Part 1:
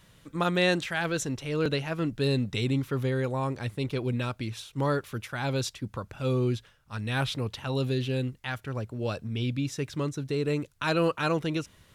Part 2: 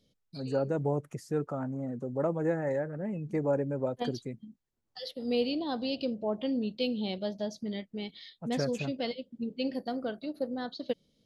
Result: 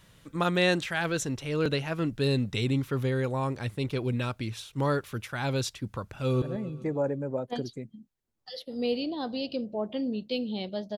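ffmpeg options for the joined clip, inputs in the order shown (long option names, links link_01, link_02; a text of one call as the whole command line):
ffmpeg -i cue0.wav -i cue1.wav -filter_complex "[0:a]apad=whole_dur=10.97,atrim=end=10.97,atrim=end=6.422[link_01];[1:a]atrim=start=2.908:end=7.46[link_02];[link_01][link_02]acrossfade=duration=0.004:curve1=hsin:curve2=hsin,asplit=2[link_03][link_04];[link_04]afade=type=in:start_time=6.14:duration=0.01,afade=type=out:start_time=6.42:duration=0.01,aecho=0:1:140|280|420|560|700|840:0.251189|0.138154|0.0759846|0.0417915|0.0229853|0.0126419[link_05];[link_03][link_05]amix=inputs=2:normalize=0" out.wav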